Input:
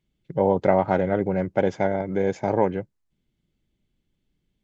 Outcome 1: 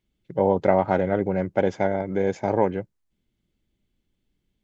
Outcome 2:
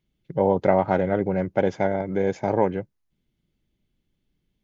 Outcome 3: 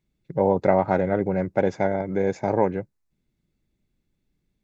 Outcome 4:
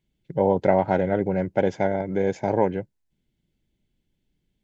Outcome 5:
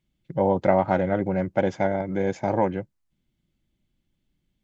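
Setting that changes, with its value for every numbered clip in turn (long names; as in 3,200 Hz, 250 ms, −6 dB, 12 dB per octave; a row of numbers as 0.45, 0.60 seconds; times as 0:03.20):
notch filter, centre frequency: 150, 7,800, 3,100, 1,200, 430 Hertz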